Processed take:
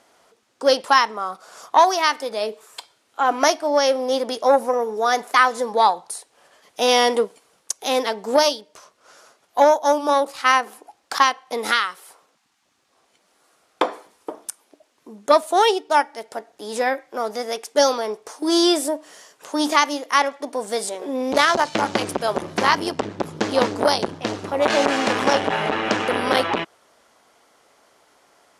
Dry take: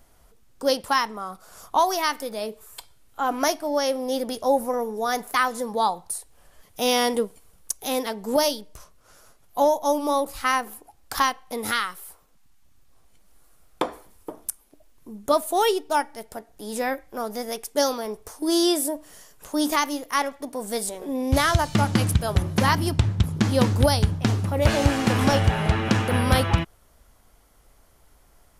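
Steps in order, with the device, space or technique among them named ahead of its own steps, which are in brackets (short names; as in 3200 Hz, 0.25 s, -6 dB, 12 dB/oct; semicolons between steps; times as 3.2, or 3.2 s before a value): public-address speaker with an overloaded transformer (core saturation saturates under 750 Hz; BPF 350–6800 Hz); gain +7 dB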